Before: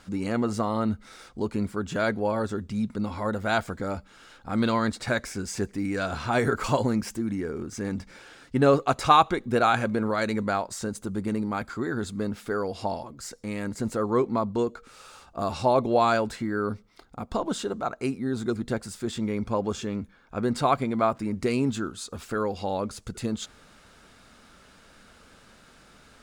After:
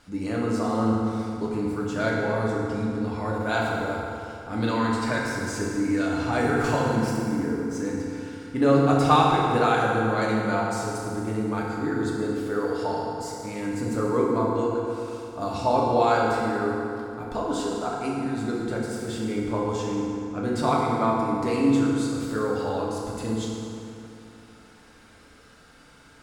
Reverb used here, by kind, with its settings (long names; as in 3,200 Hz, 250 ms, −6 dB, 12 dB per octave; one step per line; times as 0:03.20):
feedback delay network reverb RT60 2.8 s, high-frequency decay 0.65×, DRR −4.5 dB
level −4.5 dB